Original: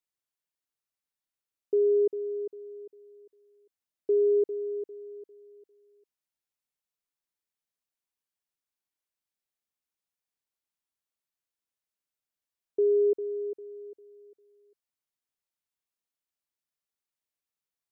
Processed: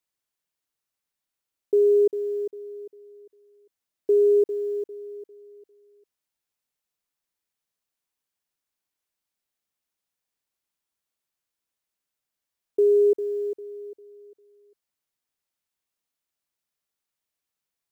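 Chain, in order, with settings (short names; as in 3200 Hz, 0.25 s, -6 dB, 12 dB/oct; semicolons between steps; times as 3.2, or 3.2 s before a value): block floating point 7-bit; gain +5 dB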